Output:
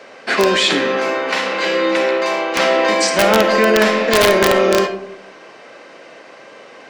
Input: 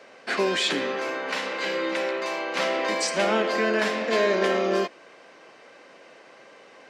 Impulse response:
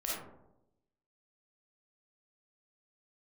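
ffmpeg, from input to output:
-filter_complex "[0:a]aeval=exprs='(mod(4.47*val(0)+1,2)-1)/4.47':channel_layout=same,asplit=2[link_01][link_02];[1:a]atrim=start_sample=2205,lowpass=8800[link_03];[link_02][link_03]afir=irnorm=-1:irlink=0,volume=-9dB[link_04];[link_01][link_04]amix=inputs=2:normalize=0,volume=7.5dB"

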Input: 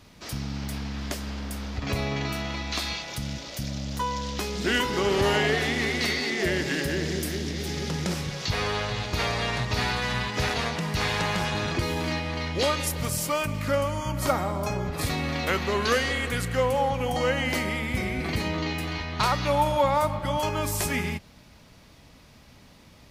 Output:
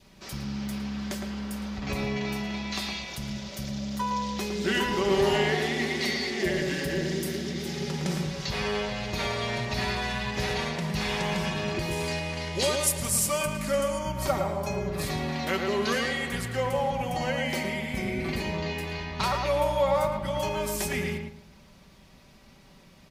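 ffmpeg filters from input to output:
ffmpeg -i in.wav -filter_complex "[0:a]asettb=1/sr,asplit=3[link_01][link_02][link_03];[link_01]atrim=end=11.914[link_04];[link_02]atrim=start=11.91:end=13.99,asetpts=PTS-STARTPTS,afade=type=in:duration=0.004:curve=qsin,afade=type=out:start_time=2.076:duration=0.004:curve=qsin,equalizer=frequency=8900:width=0.91:gain=11[link_05];[link_03]atrim=start=13.986[link_06];[link_04][link_05]acrossfade=duration=0.004:curve1=hsin:curve2=qsin[link_07];[link_07][link_06]acrossfade=duration=0.004:curve1=qsin:curve2=hsin,aecho=1:1:5.2:0.5,adynamicequalizer=threshold=0.00708:dfrequency=1300:dqfactor=2.7:tfrequency=1300:tqfactor=2.7:attack=5:release=100:ratio=0.375:range=2:mode=cutabove:tftype=bell,asettb=1/sr,asplit=3[link_08][link_09][link_10];[link_08]atrim=end=20.034[link_11];[link_09]atrim=start=20.03:end=20.76,asetpts=PTS-STARTPTS,afade=type=in:duration=0.004:curve=qsin,afade=type=out:start_time=0.726:duration=0.004:curve=qsin,asoftclip=type=hard:threshold=-18dB[link_12];[link_10]atrim=start=20.756[link_13];[link_11][link_12]acrossfade=duration=0.004:curve1=hsin:curve2=qsin[link_14];[link_14][link_13]acrossfade=duration=0.004:curve1=qsin:curve2=hsin,asplit=2[link_15][link_16];[link_16]adelay=111,lowpass=frequency=1800:poles=1,volume=-3dB,asplit=2[link_17][link_18];[link_18]adelay=111,lowpass=frequency=1800:poles=1,volume=0.29,asplit=2[link_19][link_20];[link_20]adelay=111,lowpass=frequency=1800:poles=1,volume=0.29,asplit=2[link_21][link_22];[link_22]adelay=111,lowpass=frequency=1800:poles=1,volume=0.29[link_23];[link_15][link_17][link_19][link_21][link_23]amix=inputs=5:normalize=0,volume=-4dB" out.wav

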